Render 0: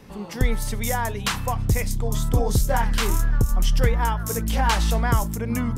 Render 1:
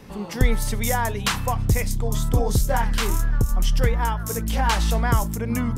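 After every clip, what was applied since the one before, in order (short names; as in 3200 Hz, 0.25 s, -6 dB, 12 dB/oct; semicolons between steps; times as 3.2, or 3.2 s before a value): vocal rider within 3 dB 2 s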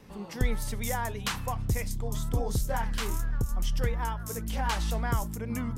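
vibrato 8.8 Hz 34 cents; gain -8.5 dB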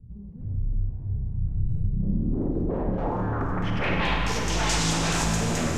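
wavefolder -31.5 dBFS; low-pass sweep 100 Hz -> 7000 Hz, 1.64–4.59; Schroeder reverb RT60 3.4 s, combs from 33 ms, DRR -0.5 dB; gain +7.5 dB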